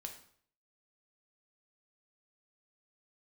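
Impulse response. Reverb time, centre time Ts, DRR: 0.55 s, 16 ms, 3.0 dB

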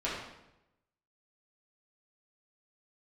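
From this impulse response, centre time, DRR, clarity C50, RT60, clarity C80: 60 ms, −8.5 dB, 1.0 dB, 0.90 s, 4.0 dB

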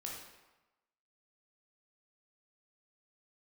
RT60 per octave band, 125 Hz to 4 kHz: 1.0, 1.0, 1.0, 1.1, 1.0, 0.80 seconds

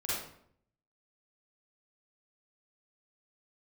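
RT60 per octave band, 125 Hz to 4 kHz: 0.85, 0.80, 0.70, 0.60, 0.55, 0.45 seconds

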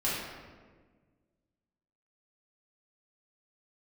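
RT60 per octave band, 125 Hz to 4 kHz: 2.1, 2.0, 1.7, 1.3, 1.2, 0.90 seconds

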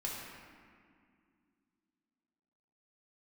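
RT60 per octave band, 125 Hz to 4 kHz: 2.7, 3.4, 2.3, 2.1, 2.0, 1.3 seconds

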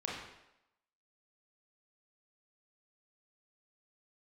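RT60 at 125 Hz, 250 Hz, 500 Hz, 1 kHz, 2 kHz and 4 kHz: 0.65, 0.80, 0.90, 0.85, 0.85, 0.75 seconds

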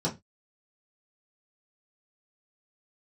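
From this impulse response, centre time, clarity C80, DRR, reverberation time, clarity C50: 15 ms, 24.0 dB, −6.0 dB, 0.20 s, 15.5 dB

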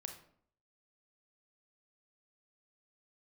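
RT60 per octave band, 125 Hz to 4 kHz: 0.70, 0.70, 0.65, 0.60, 0.45, 0.40 seconds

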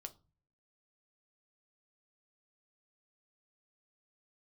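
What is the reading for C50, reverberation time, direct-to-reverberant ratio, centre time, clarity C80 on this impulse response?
18.5 dB, 0.35 s, 6.5 dB, 5 ms, 26.0 dB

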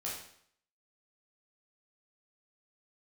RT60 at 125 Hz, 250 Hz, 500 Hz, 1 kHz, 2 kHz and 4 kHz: 0.65, 0.65, 0.65, 0.65, 0.65, 0.60 seconds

